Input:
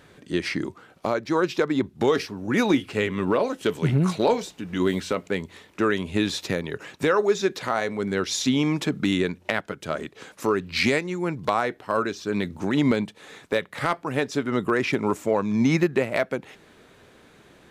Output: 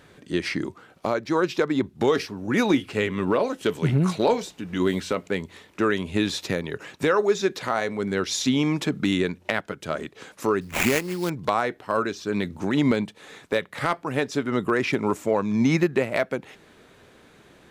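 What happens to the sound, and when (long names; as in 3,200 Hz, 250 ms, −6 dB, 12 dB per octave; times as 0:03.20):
0:10.61–0:11.30: sample-rate reduction 4,800 Hz, jitter 20%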